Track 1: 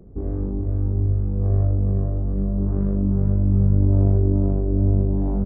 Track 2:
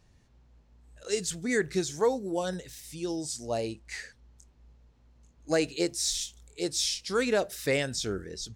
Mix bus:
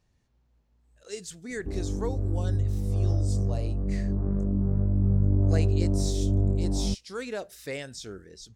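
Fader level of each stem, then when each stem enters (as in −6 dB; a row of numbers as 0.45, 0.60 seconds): −5.5, −8.0 decibels; 1.50, 0.00 seconds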